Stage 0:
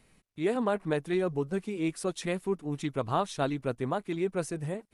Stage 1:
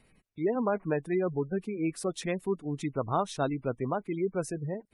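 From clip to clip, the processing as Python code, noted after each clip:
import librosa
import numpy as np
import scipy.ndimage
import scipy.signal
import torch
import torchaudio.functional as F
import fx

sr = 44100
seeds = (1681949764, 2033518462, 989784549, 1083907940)

y = fx.spec_gate(x, sr, threshold_db=-25, keep='strong')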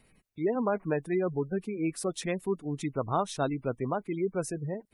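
y = fx.high_shelf(x, sr, hz=7700.0, db=5.0)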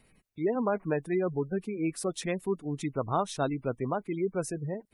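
y = x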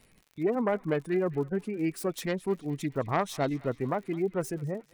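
y = fx.self_delay(x, sr, depth_ms=0.12)
y = fx.dmg_crackle(y, sr, seeds[0], per_s=88.0, level_db=-45.0)
y = fx.echo_banded(y, sr, ms=211, feedback_pct=63, hz=2800.0, wet_db=-17.5)
y = y * librosa.db_to_amplitude(1.0)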